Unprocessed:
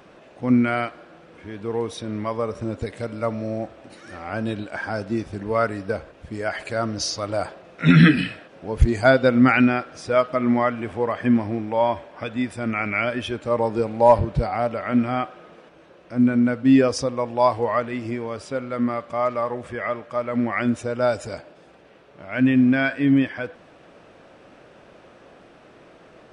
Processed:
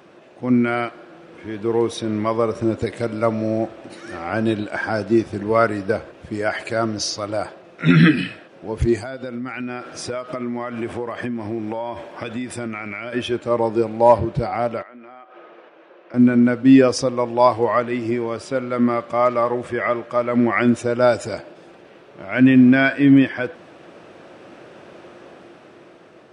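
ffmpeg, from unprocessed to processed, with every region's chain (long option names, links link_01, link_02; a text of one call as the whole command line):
ffmpeg -i in.wav -filter_complex "[0:a]asettb=1/sr,asplit=3[link_01][link_02][link_03];[link_01]atrim=end=8.984[link_04];[link_02]atrim=start=8.98:end=13.13,asetpts=PTS-STARTPTS,afade=type=in:duration=0.004:curve=qsin,afade=type=out:start_time=4.146:duration=0.004:curve=qsin,highshelf=frequency=7700:gain=7.5,acompressor=threshold=-29dB:ratio=12:attack=3.2:release=140:knee=1:detection=peak[link_05];[link_03]atrim=start=13.126[link_06];[link_04][link_05]acrossfade=duration=0.004:curve1=hsin:curve2=qsin[link_07];[link_07][link_06]acrossfade=duration=0.004:curve1=qsin:curve2=hsin,asettb=1/sr,asplit=3[link_08][link_09][link_10];[link_08]atrim=end=14.824[link_11];[link_09]atrim=start=14.82:end=16.14,asetpts=PTS-STARTPTS,afade=type=in:duration=0.004:curve=qsin,afade=type=out:start_time=1.316:duration=0.004:curve=qsin,highpass=430,lowpass=2800,acompressor=threshold=-41dB:ratio=8:attack=3.2:release=140:knee=1:detection=peak[link_12];[link_10]atrim=start=16.136[link_13];[link_11][link_12]acrossfade=duration=0.004:curve1=hsin:curve2=qsin[link_14];[link_14][link_13]acrossfade=duration=0.004:curve1=qsin:curve2=hsin,highpass=95,equalizer=frequency=350:width=7.9:gain=7,dynaudnorm=framelen=250:gausssize=9:maxgain=6dB" out.wav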